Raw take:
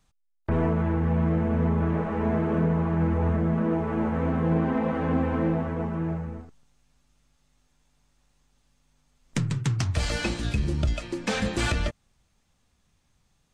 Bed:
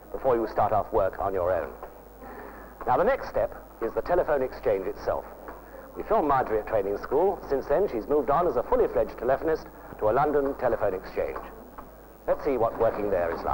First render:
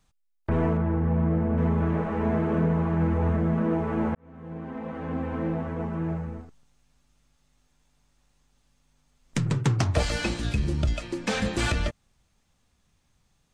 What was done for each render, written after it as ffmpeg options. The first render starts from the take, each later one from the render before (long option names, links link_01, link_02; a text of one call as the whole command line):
ffmpeg -i in.wav -filter_complex "[0:a]asettb=1/sr,asplit=3[link_01][link_02][link_03];[link_01]atrim=end=0.774[link_04];[link_02]atrim=start=0.77:end=1.58,asetpts=PTS-STARTPTS,afade=type=in:duration=0.004:curve=qsin,afade=type=out:start_time=0.806:duration=0.004:curve=qsin,lowpass=frequency=1300:poles=1[link_05];[link_03]atrim=start=1.576[link_06];[link_04][link_05]acrossfade=duration=0.004:curve1=hsin:curve2=qsin[link_07];[link_07][link_06]acrossfade=duration=0.004:curve1=qsin:curve2=hsin,asettb=1/sr,asplit=3[link_08][link_09][link_10];[link_08]atrim=end=9.464[link_11];[link_09]atrim=start=9.46:end=10.03,asetpts=PTS-STARTPTS,afade=type=in:duration=0.004:curve=qsin,afade=type=out:start_time=0.566:duration=0.004:curve=qsin,equalizer=frequency=540:width=0.56:gain=10.5[link_12];[link_10]atrim=start=10.026[link_13];[link_11][link_12]acrossfade=duration=0.004:curve1=hsin:curve2=qsin[link_14];[link_14][link_13]acrossfade=duration=0.004:curve1=qsin:curve2=hsin,asplit=2[link_15][link_16];[link_15]atrim=end=4.15,asetpts=PTS-STARTPTS,afade=type=out:start_time=4.146:duration=0.004:curve=hsin[link_17];[link_16]atrim=start=4.15,asetpts=PTS-STARTPTS,afade=type=in:duration=2.02[link_18];[link_17][link_18]concat=n=2:v=0:a=1" out.wav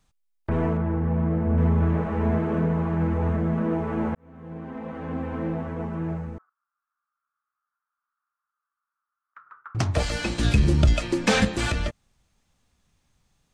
ffmpeg -i in.wav -filter_complex "[0:a]asettb=1/sr,asplit=3[link_01][link_02][link_03];[link_01]atrim=end=1.464[link_04];[link_02]atrim=start=1.46:end=2.39,asetpts=PTS-STARTPTS,afade=type=in:duration=0.004:curve=qsin,afade=type=out:start_time=0.926:duration=0.004:curve=qsin,equalizer=frequency=69:width_type=o:width=1.7:gain=6.5[link_05];[link_03]atrim=start=2.386[link_06];[link_04][link_05]acrossfade=duration=0.004:curve1=hsin:curve2=qsin[link_07];[link_07][link_06]acrossfade=duration=0.004:curve1=qsin:curve2=hsin,asettb=1/sr,asplit=3[link_08][link_09][link_10];[link_08]atrim=end=6.384[link_11];[link_09]atrim=start=6.38:end=9.75,asetpts=PTS-STARTPTS,afade=type=in:duration=0.004:curve=qsin,afade=type=out:start_time=3.366:duration=0.004:curve=qsin,asuperpass=centerf=1300:order=4:qfactor=4[link_12];[link_10]atrim=start=9.746[link_13];[link_11][link_12]acrossfade=duration=0.004:curve1=hsin:curve2=qsin[link_14];[link_14][link_13]acrossfade=duration=0.004:curve1=qsin:curve2=hsin,asettb=1/sr,asplit=3[link_15][link_16][link_17];[link_15]atrim=end=10.384[link_18];[link_16]atrim=start=10.38:end=11.45,asetpts=PTS-STARTPTS,afade=type=in:duration=0.004:curve=qsin,afade=type=out:start_time=1.066:duration=0.004:curve=qsin,acontrast=88[link_19];[link_17]atrim=start=11.446[link_20];[link_18][link_19]acrossfade=duration=0.004:curve1=hsin:curve2=qsin[link_21];[link_21][link_20]acrossfade=duration=0.004:curve1=qsin:curve2=hsin" out.wav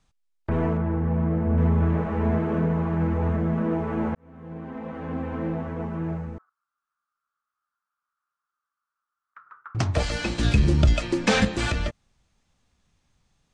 ffmpeg -i in.wav -af "lowpass=8200" out.wav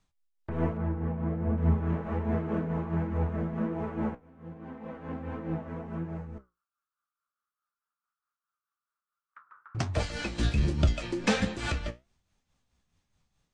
ffmpeg -i in.wav -af "tremolo=f=4.7:d=0.53,flanger=delay=9.1:depth=8.5:regen=61:speed=1.3:shape=triangular" out.wav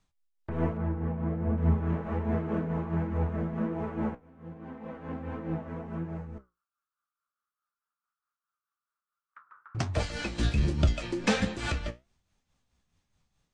ffmpeg -i in.wav -af anull out.wav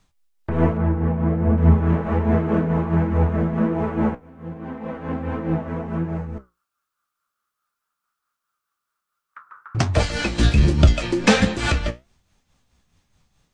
ffmpeg -i in.wav -af "volume=10.5dB" out.wav